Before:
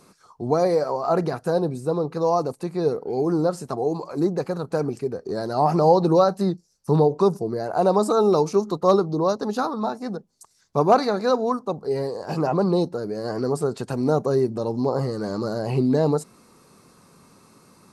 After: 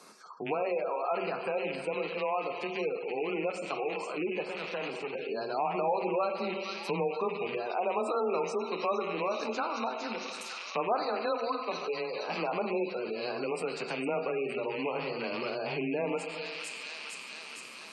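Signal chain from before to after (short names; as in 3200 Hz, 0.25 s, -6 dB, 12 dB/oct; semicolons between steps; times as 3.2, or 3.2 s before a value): rattling part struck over -30 dBFS, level -24 dBFS; de-hum 180.6 Hz, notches 3; on a send at -5 dB: reverb RT60 1.2 s, pre-delay 5 ms; 4.48–5.15 on the sum: tube stage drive 24 dB, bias 0.65; frequency shift +17 Hz; weighting filter A; in parallel at -12 dB: hard clip -19 dBFS, distortion -11 dB; on the sum: thin delay 0.458 s, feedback 67%, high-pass 2500 Hz, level -3.5 dB; spectral gate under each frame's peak -25 dB strong; compressor 2:1, threshold -37 dBFS, peak gain reduction 14 dB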